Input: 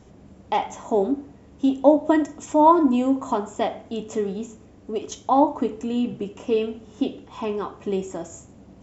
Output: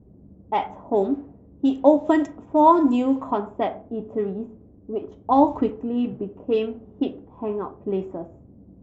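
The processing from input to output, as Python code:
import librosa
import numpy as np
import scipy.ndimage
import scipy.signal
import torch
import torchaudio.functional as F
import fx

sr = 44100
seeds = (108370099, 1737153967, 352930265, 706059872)

y = fx.env_lowpass(x, sr, base_hz=350.0, full_db=-13.5)
y = fx.low_shelf(y, sr, hz=150.0, db=10.5, at=(5.27, 5.7))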